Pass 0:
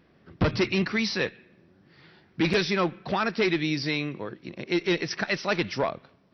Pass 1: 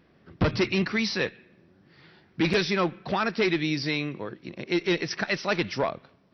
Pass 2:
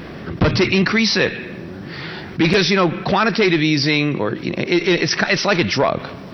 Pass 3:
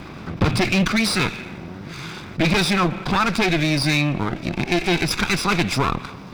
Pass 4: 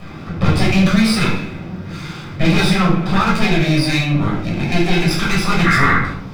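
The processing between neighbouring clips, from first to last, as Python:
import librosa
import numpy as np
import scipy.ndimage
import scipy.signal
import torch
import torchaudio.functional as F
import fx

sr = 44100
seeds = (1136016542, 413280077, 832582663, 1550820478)

y1 = x
y2 = fx.env_flatten(y1, sr, amount_pct=50)
y2 = y2 * 10.0 ** (7.0 / 20.0)
y3 = fx.lower_of_two(y2, sr, delay_ms=0.82)
y3 = y3 * 10.0 ** (-2.0 / 20.0)
y4 = fx.spec_paint(y3, sr, seeds[0], shape='noise', start_s=5.64, length_s=0.34, low_hz=1100.0, high_hz=2200.0, level_db=-18.0)
y4 = fx.room_shoebox(y4, sr, seeds[1], volume_m3=840.0, walls='furnished', distance_m=6.2)
y4 = y4 * 10.0 ** (-5.5 / 20.0)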